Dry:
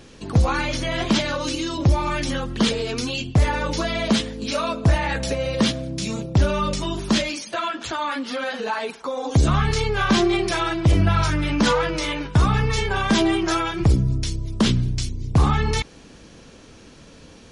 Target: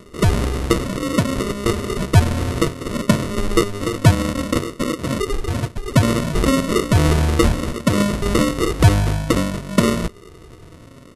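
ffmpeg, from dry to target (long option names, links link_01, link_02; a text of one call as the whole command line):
ffmpeg -i in.wav -af "afftfilt=real='re*pow(10,18/40*sin(2*PI*(0.86*log(max(b,1)*sr/1024/100)/log(2)-(-0.38)*(pts-256)/sr)))':imag='im*pow(10,18/40*sin(2*PI*(0.86*log(max(b,1)*sr/1024/100)/log(2)-(-0.38)*(pts-256)/sr)))':win_size=1024:overlap=0.75,bandreject=frequency=6200:width=8.8,aresample=16000,acrusher=samples=31:mix=1:aa=0.000001,aresample=44100,asetrate=69237,aresample=44100" out.wav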